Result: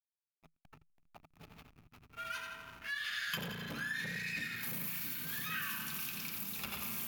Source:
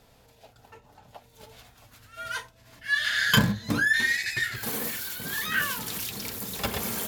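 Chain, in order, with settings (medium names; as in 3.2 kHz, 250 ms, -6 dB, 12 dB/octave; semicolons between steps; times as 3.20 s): treble shelf 2.9 kHz +8.5 dB; two-band feedback delay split 570 Hz, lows 670 ms, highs 85 ms, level -6 dB; spring tank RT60 2.3 s, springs 35 ms, chirp 75 ms, DRR 5.5 dB; hysteresis with a dead band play -35 dBFS; compression 2.5:1, threshold -37 dBFS, peak gain reduction 16.5 dB; graphic EQ with 31 bands 160 Hz +11 dB, 250 Hz +6 dB, 500 Hz -10 dB, 1.25 kHz +8 dB, 2.5 kHz +11 dB, 8 kHz -5 dB, 16 kHz +9 dB; transformer saturation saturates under 1.5 kHz; trim -8 dB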